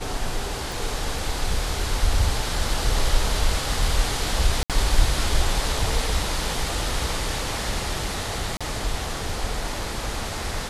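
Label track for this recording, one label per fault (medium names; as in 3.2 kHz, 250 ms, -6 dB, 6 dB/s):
0.720000	0.720000	pop
4.630000	4.700000	dropout 67 ms
8.570000	8.610000	dropout 36 ms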